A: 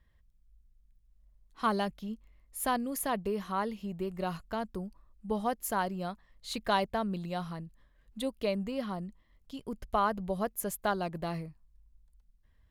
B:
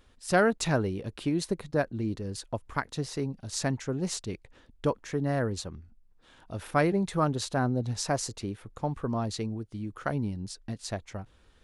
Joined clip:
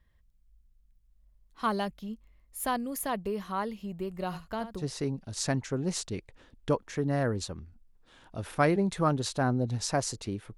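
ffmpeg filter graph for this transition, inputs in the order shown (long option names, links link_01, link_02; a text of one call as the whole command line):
ffmpeg -i cue0.wav -i cue1.wav -filter_complex "[0:a]asplit=3[link_01][link_02][link_03];[link_01]afade=type=out:start_time=4.32:duration=0.02[link_04];[link_02]aecho=1:1:71:0.266,afade=type=in:start_time=4.32:duration=0.02,afade=type=out:start_time=4.86:duration=0.02[link_05];[link_03]afade=type=in:start_time=4.86:duration=0.02[link_06];[link_04][link_05][link_06]amix=inputs=3:normalize=0,apad=whole_dur=10.57,atrim=end=10.57,atrim=end=4.86,asetpts=PTS-STARTPTS[link_07];[1:a]atrim=start=2.92:end=8.73,asetpts=PTS-STARTPTS[link_08];[link_07][link_08]acrossfade=duration=0.1:curve1=tri:curve2=tri" out.wav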